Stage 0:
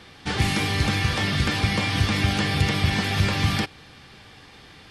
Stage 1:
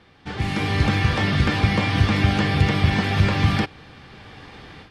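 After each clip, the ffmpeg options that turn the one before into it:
ffmpeg -i in.wav -af "lowpass=frequency=2100:poles=1,dynaudnorm=framelen=370:gausssize=3:maxgain=13dB,volume=-5dB" out.wav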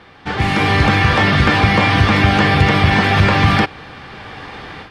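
ffmpeg -i in.wav -filter_complex "[0:a]equalizer=frequency=1100:width=0.42:gain=7,asplit=2[link_01][link_02];[link_02]alimiter=limit=-11.5dB:level=0:latency=1,volume=-0.5dB[link_03];[link_01][link_03]amix=inputs=2:normalize=0" out.wav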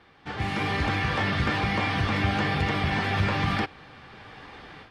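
ffmpeg -i in.wav -af "flanger=delay=2.4:depth=8.2:regen=-57:speed=1.1:shape=triangular,volume=-8.5dB" out.wav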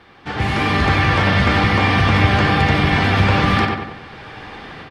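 ffmpeg -i in.wav -filter_complex "[0:a]asplit=2[link_01][link_02];[link_02]adelay=93,lowpass=frequency=3200:poles=1,volume=-3dB,asplit=2[link_03][link_04];[link_04]adelay=93,lowpass=frequency=3200:poles=1,volume=0.51,asplit=2[link_05][link_06];[link_06]adelay=93,lowpass=frequency=3200:poles=1,volume=0.51,asplit=2[link_07][link_08];[link_08]adelay=93,lowpass=frequency=3200:poles=1,volume=0.51,asplit=2[link_09][link_10];[link_10]adelay=93,lowpass=frequency=3200:poles=1,volume=0.51,asplit=2[link_11][link_12];[link_12]adelay=93,lowpass=frequency=3200:poles=1,volume=0.51,asplit=2[link_13][link_14];[link_14]adelay=93,lowpass=frequency=3200:poles=1,volume=0.51[link_15];[link_01][link_03][link_05][link_07][link_09][link_11][link_13][link_15]amix=inputs=8:normalize=0,volume=8.5dB" out.wav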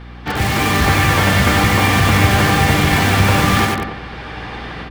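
ffmpeg -i in.wav -filter_complex "[0:a]asplit=2[link_01][link_02];[link_02]aeval=exprs='(mod(7.5*val(0)+1,2)-1)/7.5':channel_layout=same,volume=-5.5dB[link_03];[link_01][link_03]amix=inputs=2:normalize=0,aeval=exprs='val(0)+0.0178*(sin(2*PI*60*n/s)+sin(2*PI*2*60*n/s)/2+sin(2*PI*3*60*n/s)/3+sin(2*PI*4*60*n/s)/4+sin(2*PI*5*60*n/s)/5)':channel_layout=same,volume=1.5dB" out.wav

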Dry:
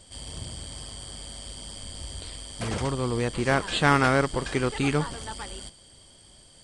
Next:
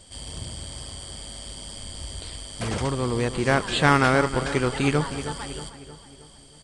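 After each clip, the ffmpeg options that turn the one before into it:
ffmpeg -i in.wav -filter_complex "[0:a]asplit=2[link_01][link_02];[link_02]adelay=314,lowpass=frequency=2800:poles=1,volume=-12dB,asplit=2[link_03][link_04];[link_04]adelay=314,lowpass=frequency=2800:poles=1,volume=0.52,asplit=2[link_05][link_06];[link_06]adelay=314,lowpass=frequency=2800:poles=1,volume=0.52,asplit=2[link_07][link_08];[link_08]adelay=314,lowpass=frequency=2800:poles=1,volume=0.52,asplit=2[link_09][link_10];[link_10]adelay=314,lowpass=frequency=2800:poles=1,volume=0.52[link_11];[link_01][link_03][link_05][link_07][link_09][link_11]amix=inputs=6:normalize=0,volume=2dB" out.wav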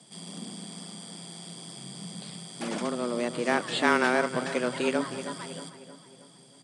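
ffmpeg -i in.wav -af "afreqshift=120,volume=-5dB" out.wav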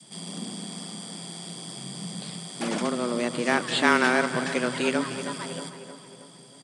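ffmpeg -i in.wav -af "adynamicequalizer=threshold=0.0126:dfrequency=570:dqfactor=0.76:tfrequency=570:tqfactor=0.76:attack=5:release=100:ratio=0.375:range=2.5:mode=cutabove:tftype=bell,aecho=1:1:233|466|699|932|1165:0.168|0.0873|0.0454|0.0236|0.0123,volume=4.5dB" out.wav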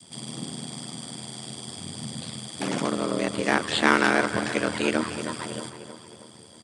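ffmpeg -i in.wav -af "aeval=exprs='val(0)*sin(2*PI*40*n/s)':channel_layout=same,volume=3.5dB" out.wav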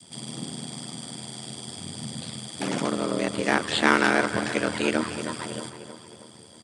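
ffmpeg -i in.wav -af "bandreject=frequency=1100:width=28" out.wav

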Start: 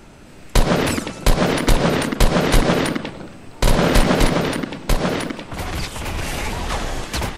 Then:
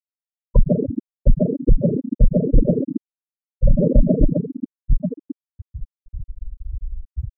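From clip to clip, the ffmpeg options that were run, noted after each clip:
ffmpeg -i in.wav -af "afftfilt=real='re*gte(hypot(re,im),0.631)':imag='im*gte(hypot(re,im),0.631)':win_size=1024:overlap=0.75,volume=2.5dB" out.wav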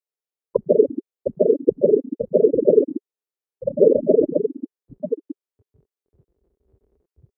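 ffmpeg -i in.wav -af "highpass=frequency=410:width_type=q:width=4.9,volume=-1dB" out.wav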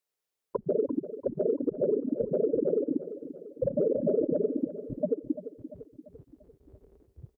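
ffmpeg -i in.wav -af "acompressor=threshold=-19dB:ratio=6,alimiter=limit=-24dB:level=0:latency=1:release=151,aecho=1:1:343|686|1029|1372|1715:0.237|0.121|0.0617|0.0315|0.016,volume=6dB" out.wav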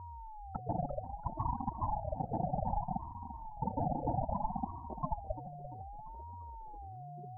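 ffmpeg -i in.wav -af "aeval=exprs='val(0)+0.0158*sin(2*PI*430*n/s)':channel_layout=same,bandreject=frequency=810:width=12,aeval=exprs='val(0)*sin(2*PI*400*n/s+400*0.3/0.63*sin(2*PI*0.63*n/s))':channel_layout=same,volume=-5dB" out.wav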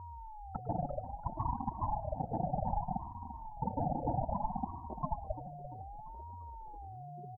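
ffmpeg -i in.wav -af "aecho=1:1:104|208|312:0.126|0.0441|0.0154" out.wav

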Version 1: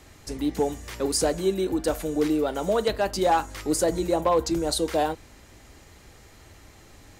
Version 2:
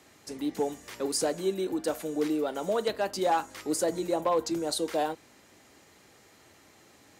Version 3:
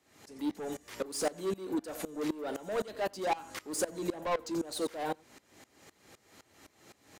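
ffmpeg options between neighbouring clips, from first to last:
ffmpeg -i in.wav -af "highpass=180,volume=-4.5dB" out.wav
ffmpeg -i in.wav -af "asoftclip=type=tanh:threshold=-28.5dB,aecho=1:1:89:0.158,aeval=exprs='val(0)*pow(10,-21*if(lt(mod(-3.9*n/s,1),2*abs(-3.9)/1000),1-mod(-3.9*n/s,1)/(2*abs(-3.9)/1000),(mod(-3.9*n/s,1)-2*abs(-3.9)/1000)/(1-2*abs(-3.9)/1000))/20)':channel_layout=same,volume=5dB" out.wav

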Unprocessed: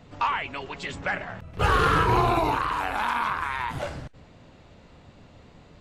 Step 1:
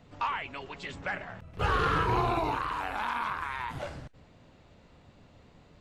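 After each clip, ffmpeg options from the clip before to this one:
ffmpeg -i in.wav -filter_complex "[0:a]acrossover=split=6600[link_01][link_02];[link_02]acompressor=threshold=-55dB:ratio=4:attack=1:release=60[link_03];[link_01][link_03]amix=inputs=2:normalize=0,volume=-6dB" out.wav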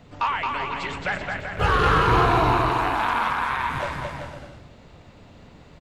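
ffmpeg -i in.wav -af "aecho=1:1:220|385|508.8|601.6|671.2:0.631|0.398|0.251|0.158|0.1,volume=7dB" out.wav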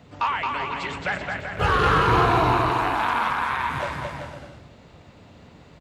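ffmpeg -i in.wav -af "highpass=57" out.wav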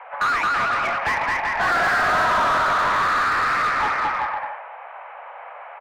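ffmpeg -i in.wav -filter_complex "[0:a]highpass=frequency=350:width_type=q:width=0.5412,highpass=frequency=350:width_type=q:width=1.307,lowpass=frequency=2200:width_type=q:width=0.5176,lowpass=frequency=2200:width_type=q:width=0.7071,lowpass=frequency=2200:width_type=q:width=1.932,afreqshift=270,asplit=2[link_01][link_02];[link_02]highpass=frequency=720:poles=1,volume=28dB,asoftclip=type=tanh:threshold=-8.5dB[link_03];[link_01][link_03]amix=inputs=2:normalize=0,lowpass=frequency=1400:poles=1,volume=-6dB,volume=-2.5dB" out.wav

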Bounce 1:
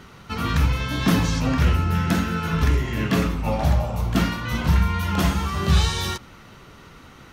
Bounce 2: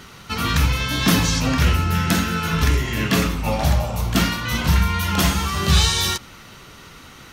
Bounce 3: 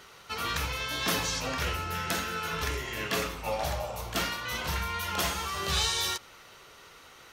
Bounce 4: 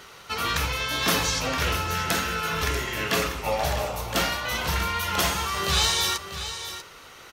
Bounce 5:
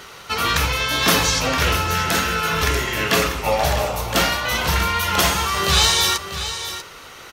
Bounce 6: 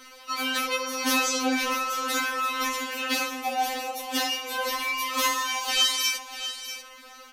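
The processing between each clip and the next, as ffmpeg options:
ffmpeg -i in.wav -af "highshelf=frequency=2300:gain=9.5,volume=1dB" out.wav
ffmpeg -i in.wav -af "lowshelf=frequency=330:width_type=q:width=1.5:gain=-9,volume=-8.5dB" out.wav
ffmpeg -i in.wav -af "aecho=1:1:642:0.282,volume=5.5dB" out.wav
ffmpeg -i in.wav -af "alimiter=level_in=7.5dB:limit=-1dB:release=50:level=0:latency=1,volume=-1dB" out.wav
ffmpeg -i in.wav -af "afftfilt=real='re*3.46*eq(mod(b,12),0)':imag='im*3.46*eq(mod(b,12),0)':win_size=2048:overlap=0.75,volume=-5dB" out.wav

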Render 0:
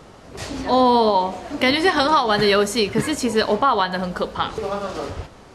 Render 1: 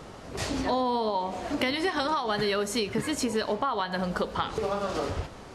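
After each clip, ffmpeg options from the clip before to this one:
ffmpeg -i in.wav -af "acompressor=threshold=-25dB:ratio=6" out.wav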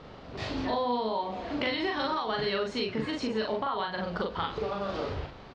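ffmpeg -i in.wav -filter_complex "[0:a]lowpass=frequency=4200:width_type=q:width=1.7,aemphasis=mode=reproduction:type=50fm,asplit=2[link_01][link_02];[link_02]adelay=41,volume=-2.5dB[link_03];[link_01][link_03]amix=inputs=2:normalize=0,volume=-5dB" out.wav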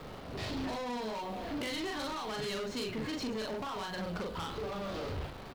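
ffmpeg -i in.wav -filter_complex "[0:a]asplit=2[link_01][link_02];[link_02]acrusher=bits=5:dc=4:mix=0:aa=0.000001,volume=-7.5dB[link_03];[link_01][link_03]amix=inputs=2:normalize=0,asoftclip=type=tanh:threshold=-31.5dB,acrossover=split=330|3000[link_04][link_05][link_06];[link_05]acompressor=threshold=-45dB:ratio=1.5[link_07];[link_04][link_07][link_06]amix=inputs=3:normalize=0" out.wav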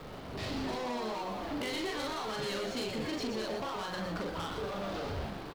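ffmpeg -i in.wav -filter_complex "[0:a]asplit=8[link_01][link_02][link_03][link_04][link_05][link_06][link_07][link_08];[link_02]adelay=120,afreqshift=120,volume=-7dB[link_09];[link_03]adelay=240,afreqshift=240,volume=-12.4dB[link_10];[link_04]adelay=360,afreqshift=360,volume=-17.7dB[link_11];[link_05]adelay=480,afreqshift=480,volume=-23.1dB[link_12];[link_06]adelay=600,afreqshift=600,volume=-28.4dB[link_13];[link_07]adelay=720,afreqshift=720,volume=-33.8dB[link_14];[link_08]adelay=840,afreqshift=840,volume=-39.1dB[link_15];[link_01][link_09][link_10][link_11][link_12][link_13][link_14][link_15]amix=inputs=8:normalize=0" out.wav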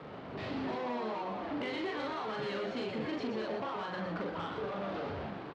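ffmpeg -i in.wav -af "highpass=120,lowpass=2700" out.wav

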